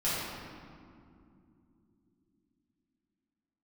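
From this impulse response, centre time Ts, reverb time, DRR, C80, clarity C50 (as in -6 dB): 134 ms, 2.7 s, -11.0 dB, -0.5 dB, -3.0 dB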